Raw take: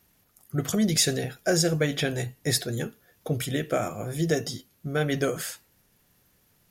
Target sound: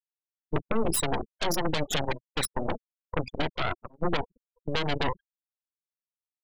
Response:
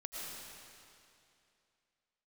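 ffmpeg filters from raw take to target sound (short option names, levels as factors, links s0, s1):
-filter_complex "[0:a]highpass=180,lowpass=4200,asplit=2[s0][s1];[s1]aecho=0:1:441|882|1323:0.112|0.0381|0.013[s2];[s0][s2]amix=inputs=2:normalize=0,afftfilt=real='re*gte(hypot(re,im),0.1)':imag='im*gte(hypot(re,im),0.1)':win_size=1024:overlap=0.75,acompressor=threshold=0.0562:ratio=16,aeval=exprs='0.158*(cos(1*acos(clip(val(0)/0.158,-1,1)))-cos(1*PI/2))+0.0794*(cos(8*acos(clip(val(0)/0.158,-1,1)))-cos(8*PI/2))':c=same,highshelf=f=2700:g=8.5,asetrate=45938,aresample=44100,aexciter=amount=1.8:drive=2.1:freq=3100,alimiter=limit=0.158:level=0:latency=1:release=104,agate=range=0.0891:threshold=0.0355:ratio=16:detection=peak"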